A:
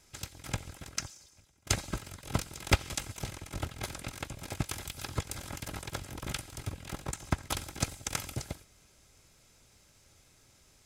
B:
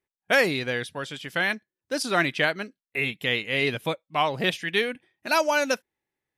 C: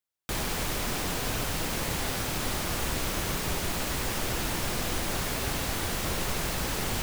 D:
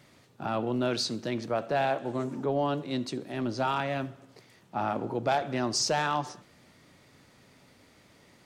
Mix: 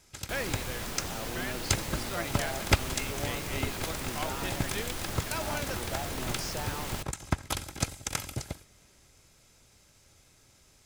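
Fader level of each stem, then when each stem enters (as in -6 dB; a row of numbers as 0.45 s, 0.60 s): +1.5 dB, -14.5 dB, -7.0 dB, -12.0 dB; 0.00 s, 0.00 s, 0.00 s, 0.65 s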